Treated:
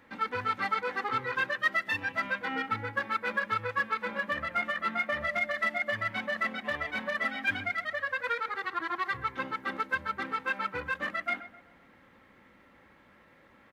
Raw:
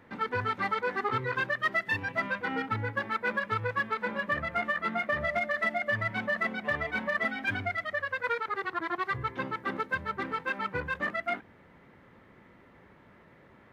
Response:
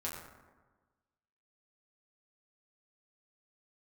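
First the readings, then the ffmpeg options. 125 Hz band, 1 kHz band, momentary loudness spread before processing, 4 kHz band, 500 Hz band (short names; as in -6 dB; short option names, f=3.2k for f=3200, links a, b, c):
-7.5 dB, 0.0 dB, 4 LU, +2.0 dB, -3.5 dB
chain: -filter_complex "[0:a]tiltshelf=f=1.2k:g=-4,aecho=1:1:3.7:0.37,asplit=2[a][b];[b]adelay=130,lowpass=f=1.8k:p=1,volume=-13dB,asplit=2[c][d];[d]adelay=130,lowpass=f=1.8k:p=1,volume=0.48,asplit=2[e][f];[f]adelay=130,lowpass=f=1.8k:p=1,volume=0.48,asplit=2[g][h];[h]adelay=130,lowpass=f=1.8k:p=1,volume=0.48,asplit=2[i][j];[j]adelay=130,lowpass=f=1.8k:p=1,volume=0.48[k];[a][c][e][g][i][k]amix=inputs=6:normalize=0,volume=-1.5dB"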